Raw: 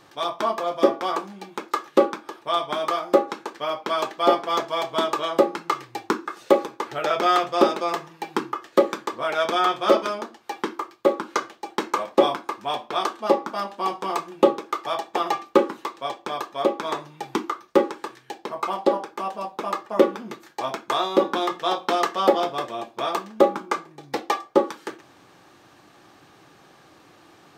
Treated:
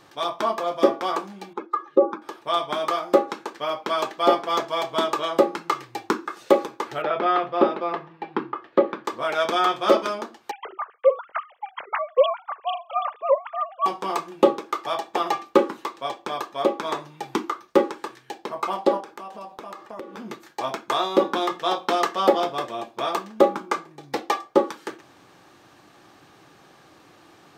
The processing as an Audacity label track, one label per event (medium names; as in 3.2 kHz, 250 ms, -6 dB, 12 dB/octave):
1.530000	2.220000	spectral contrast enhancement exponent 1.8
7.020000	9.050000	distance through air 370 m
10.510000	13.860000	formants replaced by sine waves
19.000000	20.170000	compression, threshold -34 dBFS